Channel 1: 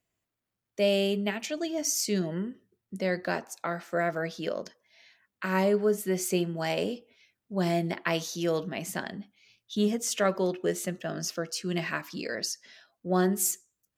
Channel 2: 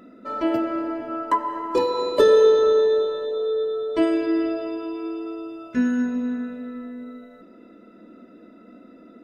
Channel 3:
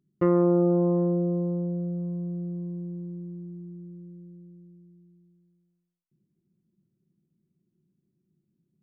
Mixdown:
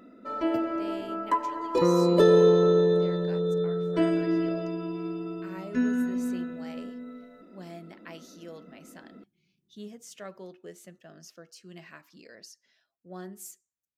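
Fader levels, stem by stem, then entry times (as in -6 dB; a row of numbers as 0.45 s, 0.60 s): -16.5 dB, -4.5 dB, -2.0 dB; 0.00 s, 0.00 s, 1.60 s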